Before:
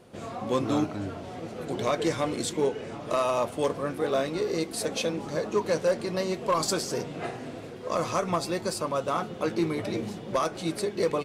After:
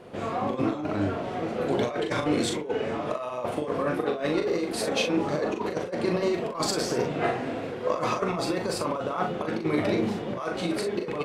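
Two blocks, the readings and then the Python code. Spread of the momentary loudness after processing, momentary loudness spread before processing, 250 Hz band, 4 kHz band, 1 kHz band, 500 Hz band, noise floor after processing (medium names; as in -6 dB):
5 LU, 10 LU, +3.0 dB, +1.0 dB, +0.5 dB, +0.5 dB, -35 dBFS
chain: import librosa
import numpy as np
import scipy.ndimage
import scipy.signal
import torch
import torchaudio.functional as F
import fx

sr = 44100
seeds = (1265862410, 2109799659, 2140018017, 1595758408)

y = fx.bass_treble(x, sr, bass_db=-5, treble_db=-11)
y = fx.over_compress(y, sr, threshold_db=-31.0, ratio=-0.5)
y = fx.room_early_taps(y, sr, ms=(40, 62), db=(-5.0, -15.0))
y = y * librosa.db_to_amplitude(4.0)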